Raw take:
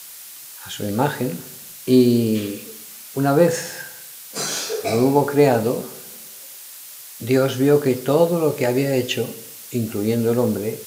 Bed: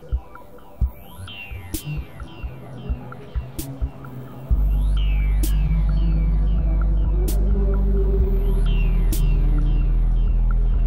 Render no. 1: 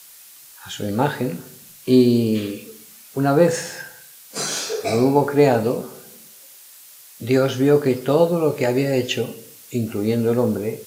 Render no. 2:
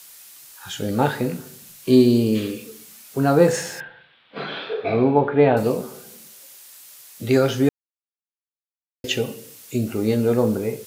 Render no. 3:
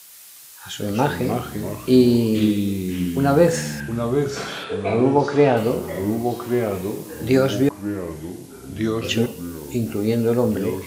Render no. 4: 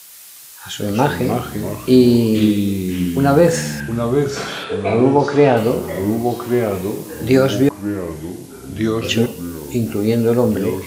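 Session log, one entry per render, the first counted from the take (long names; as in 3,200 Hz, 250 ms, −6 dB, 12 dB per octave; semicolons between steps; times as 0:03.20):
noise reduction from a noise print 6 dB
0:03.80–0:05.57: elliptic low-pass filter 3,500 Hz, stop band 50 dB; 0:07.69–0:09.04: silence
delay with pitch and tempo change per echo 117 ms, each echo −3 semitones, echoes 3, each echo −6 dB
level +4 dB; brickwall limiter −1 dBFS, peak gain reduction 2 dB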